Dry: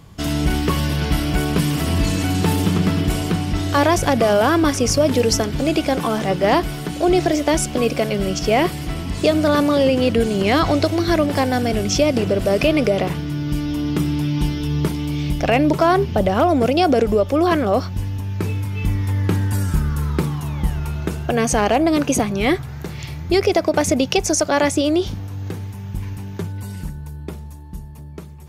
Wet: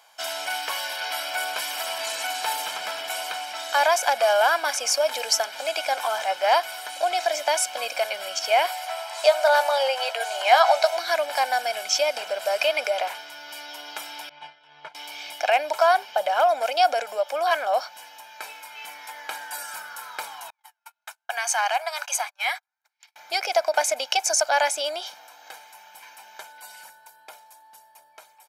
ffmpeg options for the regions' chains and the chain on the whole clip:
-filter_complex "[0:a]asettb=1/sr,asplit=3[a][b][c];[a]atrim=end=8.684[d];[b]atrim=start=8.68:end=10.97,asetpts=PTS-STARTPTS,afade=t=in:d=0.004:c=qsin,afade=t=out:st=2.286:d=0.004:c=qsin,highpass=f=670:t=q:w=2,asplit=2[e][f];[f]adelay=15,volume=-10.5dB[g];[e][g]amix=inputs=2:normalize=0,atrim=end_sample=100989[h];[c]atrim=start=10.966[i];[d][h]acrossfade=d=0.004:c1=hsin:c2=qsin[j];[j][i]acrossfade=d=0.004:c1=qsin:c2=hsin,asettb=1/sr,asplit=3[k][l][m];[k]atrim=end=14.294[n];[l]atrim=start=14.29:end=14.95,asetpts=PTS-STARTPTS,afade=t=in:d=0.004:c=qsin,afade=t=out:st=0.656:d=0.004:c=qsin,lowpass=2.5k,agate=range=-33dB:threshold=-14dB:ratio=3:release=100:detection=peak,lowshelf=f=180:t=q:w=3:g=6.5[o];[m]atrim=start=14.946[p];[n][o]acrossfade=d=0.004:c1=hsin:c2=qsin[q];[q][p]acrossfade=d=0.004:c1=qsin:c2=hsin,asettb=1/sr,asplit=3[r][s][t];[r]atrim=end=20.504[u];[s]atrim=start=20.5:end=23.16,asetpts=PTS-STARTPTS,afade=t=in:d=0.004:c=qsin,afade=t=out:st=2.656:d=0.004:c=qsin,highpass=f=820:w=0.5412,highpass=f=820:w=1.3066,equalizer=f=3.1k:t=o:w=0.64:g=-2.5,agate=range=-42dB:threshold=-36dB:ratio=16:release=100:detection=peak[v];[t]atrim=start=23.156[w];[u][v]acrossfade=d=0.004:c1=hsin:c2=qsin[x];[x][w]acrossfade=d=0.004:c1=qsin:c2=hsin,highpass=f=660:w=0.5412,highpass=f=660:w=1.3066,aecho=1:1:1.3:0.65,volume=-2.5dB"

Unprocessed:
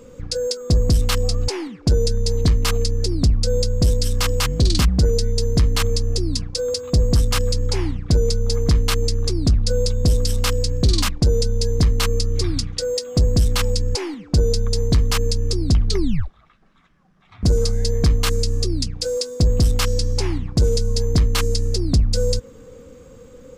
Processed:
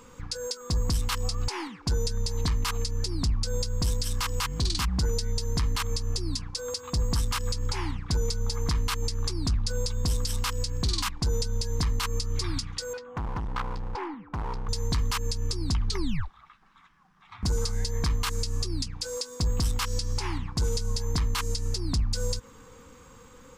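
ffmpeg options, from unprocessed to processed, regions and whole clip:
-filter_complex "[0:a]asettb=1/sr,asplit=3[a][b][c];[a]atrim=end=12.934[d];[b]atrim=start=12.93:end=14.69,asetpts=PTS-STARTPTS,afade=t=in:d=0.004:c=qsin,afade=t=out:st=1.756:d=0.004:c=qsin,lowpass=1.3k,bandreject=f=440:w=8.9,asoftclip=type=hard:threshold=-22.5dB[e];[c]atrim=start=14.686[f];[d][e]acrossfade=d=0.004:c1=hsin:c2=qsin[g];[g][f]acrossfade=d=0.004:c1=qsin:c2=hsin,lowshelf=f=740:t=q:w=3:g=-7,alimiter=limit=-18.5dB:level=0:latency=1:release=124"

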